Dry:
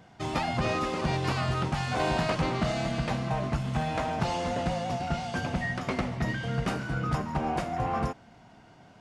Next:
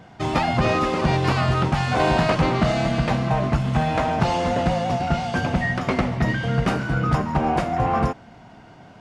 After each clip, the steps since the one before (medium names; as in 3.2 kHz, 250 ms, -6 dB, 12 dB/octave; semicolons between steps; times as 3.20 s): treble shelf 4.5 kHz -6.5 dB; trim +8.5 dB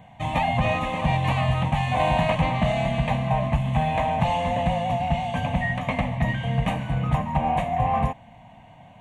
static phaser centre 1.4 kHz, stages 6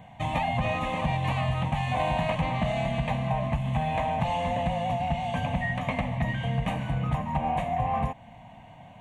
compression 2:1, threshold -27 dBFS, peak gain reduction 6.5 dB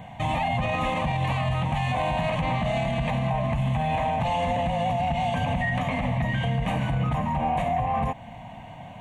peak limiter -24.5 dBFS, peak gain reduction 9.5 dB; trim +7 dB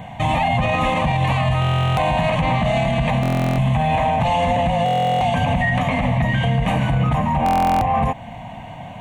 buffer glitch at 1.60/3.21/4.84/7.44 s, samples 1024, times 15; trim +7 dB